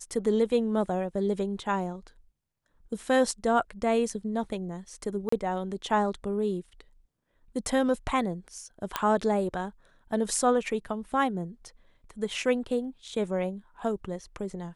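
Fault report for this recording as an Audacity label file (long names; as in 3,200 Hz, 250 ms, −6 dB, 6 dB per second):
5.290000	5.320000	drop-out 34 ms
8.960000	8.960000	click −11 dBFS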